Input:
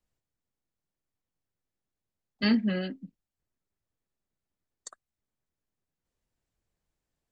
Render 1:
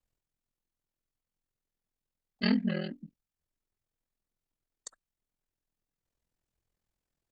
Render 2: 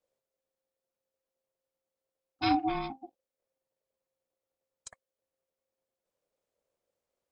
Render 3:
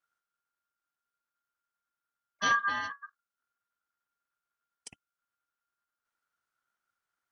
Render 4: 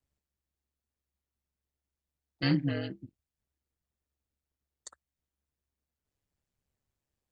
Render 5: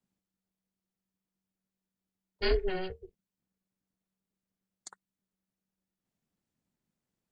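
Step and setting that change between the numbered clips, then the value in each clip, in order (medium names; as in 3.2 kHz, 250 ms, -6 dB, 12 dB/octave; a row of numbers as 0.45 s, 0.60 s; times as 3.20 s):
ring modulator, frequency: 21 Hz, 530 Hz, 1.4 kHz, 70 Hz, 190 Hz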